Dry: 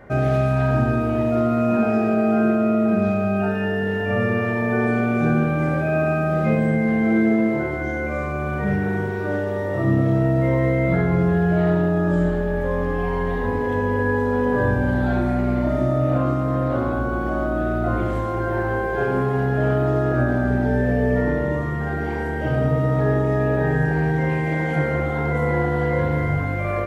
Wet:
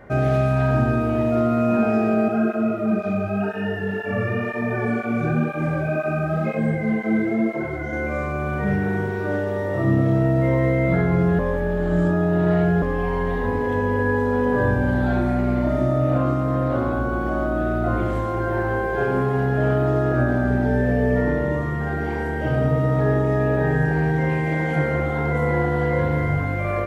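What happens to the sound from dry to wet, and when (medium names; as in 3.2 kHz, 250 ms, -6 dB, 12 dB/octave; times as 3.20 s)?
2.28–7.93 s: cancelling through-zero flanger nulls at 2 Hz, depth 4.9 ms
11.39–12.82 s: reverse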